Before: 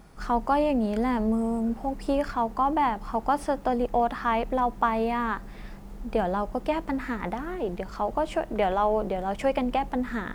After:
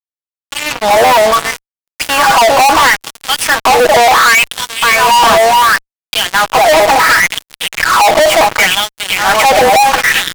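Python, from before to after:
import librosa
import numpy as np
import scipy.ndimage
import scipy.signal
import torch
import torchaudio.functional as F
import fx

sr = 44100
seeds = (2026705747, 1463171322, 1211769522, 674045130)

p1 = fx.fade_in_head(x, sr, length_s=1.62)
p2 = p1 + 0.81 * np.pad(p1, (int(6.2 * sr / 1000.0), 0))[:len(p1)]
p3 = p2 + fx.echo_single(p2, sr, ms=406, db=-10.5, dry=0)
p4 = fx.filter_lfo_highpass(p3, sr, shape='sine', hz=0.7, low_hz=630.0, high_hz=3700.0, q=4.0)
p5 = fx.fuzz(p4, sr, gain_db=42.0, gate_db=-39.0)
y = p5 * 10.0 ** (7.5 / 20.0)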